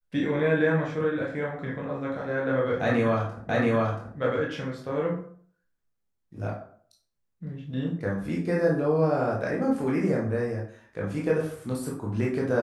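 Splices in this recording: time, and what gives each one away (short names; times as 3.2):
3.49 repeat of the last 0.68 s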